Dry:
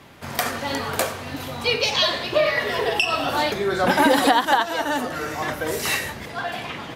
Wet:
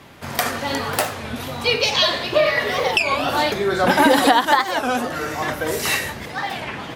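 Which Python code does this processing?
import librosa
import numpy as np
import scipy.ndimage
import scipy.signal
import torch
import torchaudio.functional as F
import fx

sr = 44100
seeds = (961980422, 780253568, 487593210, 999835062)

y = fx.record_warp(x, sr, rpm=33.33, depth_cents=250.0)
y = y * 10.0 ** (2.5 / 20.0)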